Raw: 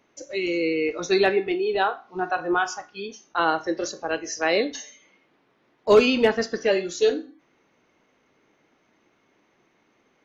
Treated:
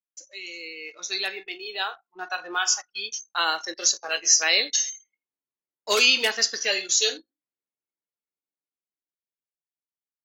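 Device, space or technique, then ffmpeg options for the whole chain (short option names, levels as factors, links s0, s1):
voice memo with heavy noise removal: -filter_complex "[0:a]aderivative,asettb=1/sr,asplit=3[s0][s1][s2];[s0]atrim=end=4.004[s3];[s1]atrim=start=4:end=4.43,asetpts=PTS-STARTPTS,afade=t=in:d=0.004:c=qsin,afade=t=out:st=0.426:d=0.004:c=qsin,asplit=2[s4][s5];[s5]adelay=14,volume=0.631[s6];[s4][s6]amix=inputs=2:normalize=0,atrim=end_sample=18963[s7];[s2]atrim=start=4.426[s8];[s3][s7]acrossfade=d=0.004:c1=hsin:c2=qsin[s9];[s9][s8]acrossfade=d=0.004:c1=qsin:c2=hsin,anlmdn=0.000631,dynaudnorm=f=220:g=17:m=3.35,adynamicequalizer=threshold=0.0112:dfrequency=2300:dqfactor=0.7:tfrequency=2300:tqfactor=0.7:attack=5:release=100:ratio=0.375:range=2:mode=boostabove:tftype=highshelf,volume=1.26"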